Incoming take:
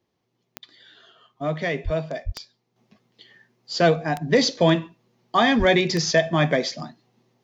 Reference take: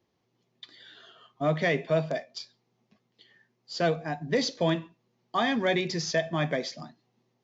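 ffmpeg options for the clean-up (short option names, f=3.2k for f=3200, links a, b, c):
-filter_complex "[0:a]adeclick=t=4,asplit=3[a][b][c];[a]afade=t=out:st=1.84:d=0.02[d];[b]highpass=f=140:w=0.5412,highpass=f=140:w=1.3066,afade=t=in:st=1.84:d=0.02,afade=t=out:st=1.96:d=0.02[e];[c]afade=t=in:st=1.96:d=0.02[f];[d][e][f]amix=inputs=3:normalize=0,asplit=3[g][h][i];[g]afade=t=out:st=2.25:d=0.02[j];[h]highpass=f=140:w=0.5412,highpass=f=140:w=1.3066,afade=t=in:st=2.25:d=0.02,afade=t=out:st=2.37:d=0.02[k];[i]afade=t=in:st=2.37:d=0.02[l];[j][k][l]amix=inputs=3:normalize=0,asplit=3[m][n][o];[m]afade=t=out:st=5.58:d=0.02[p];[n]highpass=f=140:w=0.5412,highpass=f=140:w=1.3066,afade=t=in:st=5.58:d=0.02,afade=t=out:st=5.7:d=0.02[q];[o]afade=t=in:st=5.7:d=0.02[r];[p][q][r]amix=inputs=3:normalize=0,asetnsamples=n=441:p=0,asendcmd='2.76 volume volume -8dB',volume=0dB"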